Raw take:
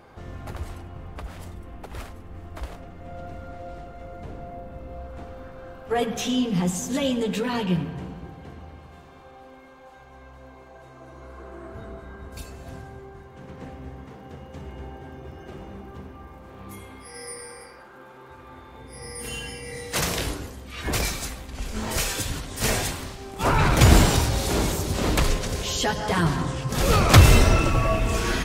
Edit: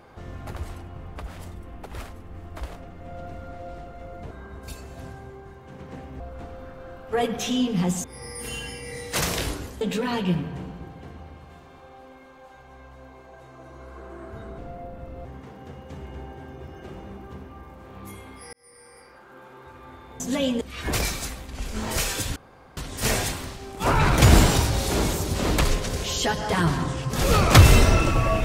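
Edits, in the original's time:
0:04.31–0:04.98: swap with 0:12.00–0:13.89
0:06.82–0:07.23: swap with 0:18.84–0:20.61
0:17.17–0:18.08: fade in
0:22.36: splice in room tone 0.41 s

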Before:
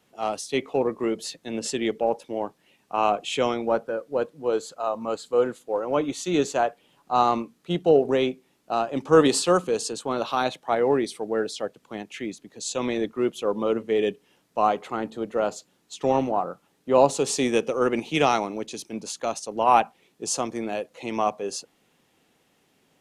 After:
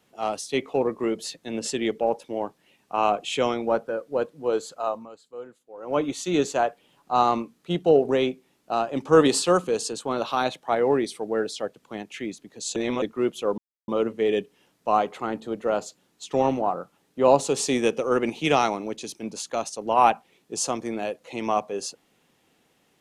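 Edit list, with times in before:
0:04.89–0:05.97: duck −17 dB, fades 0.20 s
0:12.76–0:13.02: reverse
0:13.58: splice in silence 0.30 s

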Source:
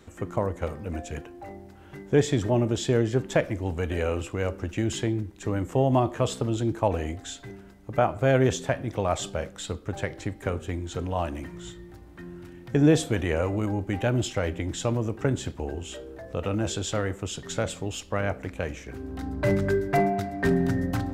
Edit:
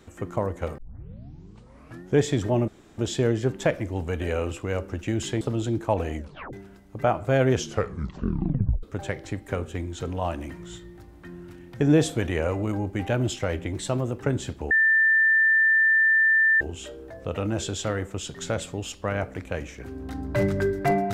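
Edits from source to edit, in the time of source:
0:00.78: tape start 1.38 s
0:02.68: splice in room tone 0.30 s
0:05.11–0:06.35: remove
0:07.10: tape stop 0.37 s
0:08.46: tape stop 1.31 s
0:14.67–0:15.19: play speed 109%
0:15.69: insert tone 1,780 Hz −16 dBFS 1.90 s

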